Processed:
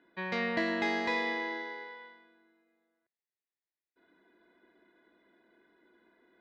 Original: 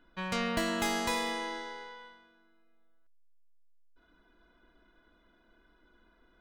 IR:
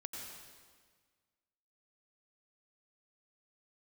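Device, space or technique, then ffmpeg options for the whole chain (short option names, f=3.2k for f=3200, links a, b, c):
kitchen radio: -af "highpass=200,equalizer=f=370:t=q:w=4:g=6,equalizer=f=1.3k:t=q:w=4:g=-9,equalizer=f=1.9k:t=q:w=4:g=8,equalizer=f=3k:t=q:w=4:g=-7,lowpass=f=4.2k:w=0.5412,lowpass=f=4.2k:w=1.3066"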